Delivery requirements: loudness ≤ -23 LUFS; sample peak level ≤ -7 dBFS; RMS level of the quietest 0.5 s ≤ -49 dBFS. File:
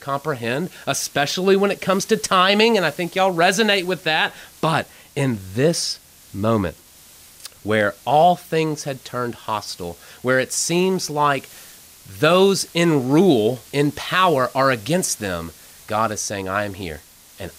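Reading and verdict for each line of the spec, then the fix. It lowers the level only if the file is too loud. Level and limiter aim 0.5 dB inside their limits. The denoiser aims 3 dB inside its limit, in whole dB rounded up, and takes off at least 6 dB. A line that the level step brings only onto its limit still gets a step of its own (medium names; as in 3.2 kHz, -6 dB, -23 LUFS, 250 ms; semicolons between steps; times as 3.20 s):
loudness -19.5 LUFS: fail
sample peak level -5.0 dBFS: fail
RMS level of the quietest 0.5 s -47 dBFS: fail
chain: trim -4 dB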